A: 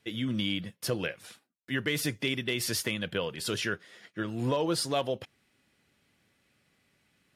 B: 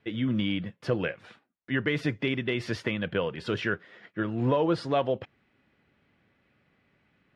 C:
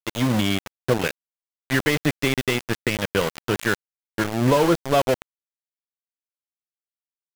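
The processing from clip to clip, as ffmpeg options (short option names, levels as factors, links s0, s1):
-af "lowpass=2200,volume=1.58"
-af "aeval=exprs='val(0)*gte(abs(val(0)),0.0422)':c=same,volume=2.24"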